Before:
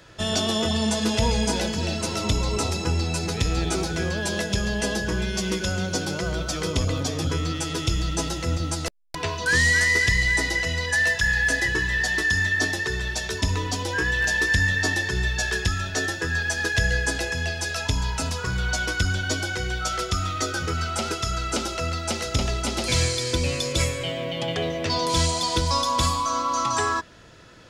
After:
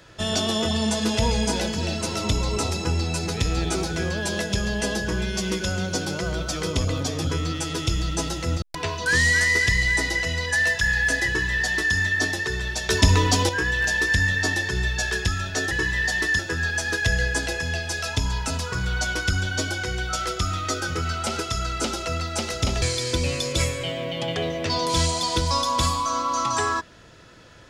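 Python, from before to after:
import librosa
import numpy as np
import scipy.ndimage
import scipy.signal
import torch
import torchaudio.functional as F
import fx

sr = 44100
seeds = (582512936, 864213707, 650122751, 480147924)

y = fx.edit(x, sr, fx.cut(start_s=8.62, length_s=0.4),
    fx.duplicate(start_s=11.67, length_s=0.68, to_s=16.11),
    fx.clip_gain(start_s=13.29, length_s=0.6, db=7.5),
    fx.cut(start_s=22.54, length_s=0.48), tone=tone)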